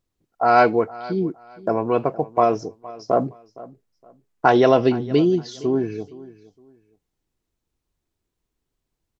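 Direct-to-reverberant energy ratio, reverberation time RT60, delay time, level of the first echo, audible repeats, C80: none, none, 0.465 s, -19.5 dB, 2, none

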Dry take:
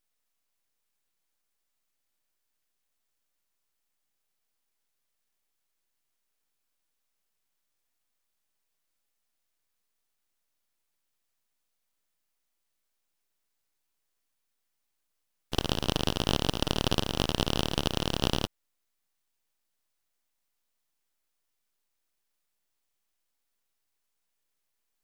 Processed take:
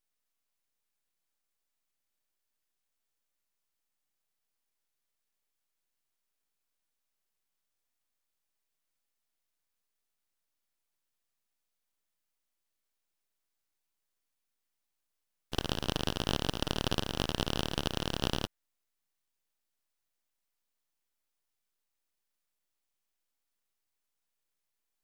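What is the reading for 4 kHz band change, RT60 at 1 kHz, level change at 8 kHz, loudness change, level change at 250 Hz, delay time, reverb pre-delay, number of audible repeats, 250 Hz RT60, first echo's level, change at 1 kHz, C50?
-4.5 dB, none, -4.5 dB, -4.5 dB, -4.5 dB, none, none, none, none, none, -4.0 dB, none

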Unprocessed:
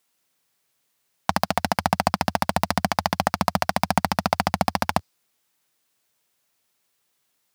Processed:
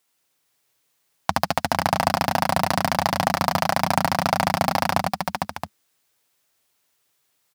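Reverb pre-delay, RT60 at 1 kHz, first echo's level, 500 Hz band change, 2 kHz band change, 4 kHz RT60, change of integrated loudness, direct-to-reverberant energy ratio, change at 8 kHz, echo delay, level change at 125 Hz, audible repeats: none, none, -7.0 dB, +2.5 dB, +2.5 dB, none, +1.5 dB, none, +2.5 dB, 78 ms, +1.5 dB, 3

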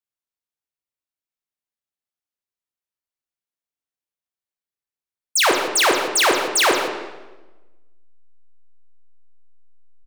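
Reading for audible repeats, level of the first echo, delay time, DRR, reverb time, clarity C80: 1, -12.0 dB, 0.166 s, 1.5 dB, 1.1 s, 5.5 dB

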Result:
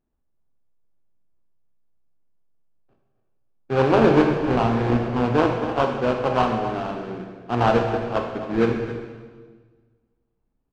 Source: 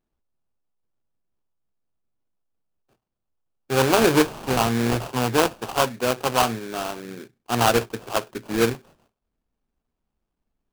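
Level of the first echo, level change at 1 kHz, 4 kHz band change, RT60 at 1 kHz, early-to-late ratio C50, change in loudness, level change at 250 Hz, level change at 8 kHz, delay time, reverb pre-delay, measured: -13.5 dB, +0.5 dB, -8.5 dB, 1.4 s, 4.0 dB, +1.0 dB, +3.0 dB, under -20 dB, 0.266 s, 22 ms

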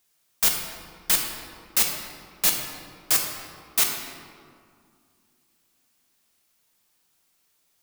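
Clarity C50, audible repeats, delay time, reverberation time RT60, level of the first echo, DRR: 3.5 dB, none, none, 2.2 s, none, 1.0 dB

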